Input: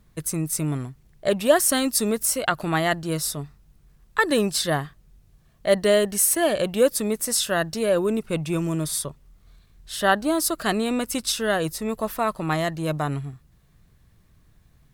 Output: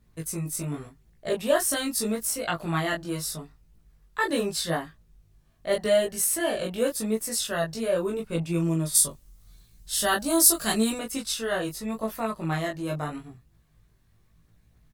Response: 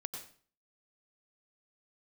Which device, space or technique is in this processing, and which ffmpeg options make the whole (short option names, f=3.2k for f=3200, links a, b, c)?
double-tracked vocal: -filter_complex "[0:a]asplit=2[a][b];[b]adelay=18,volume=-2dB[c];[a][c]amix=inputs=2:normalize=0,flanger=delay=17.5:depth=3.8:speed=0.82,asplit=3[d][e][f];[d]afade=t=out:st=8.94:d=0.02[g];[e]bass=f=250:g=4,treble=f=4k:g=14,afade=t=in:st=8.94:d=0.02,afade=t=out:st=10.98:d=0.02[h];[f]afade=t=in:st=10.98:d=0.02[i];[g][h][i]amix=inputs=3:normalize=0,volume=-4dB"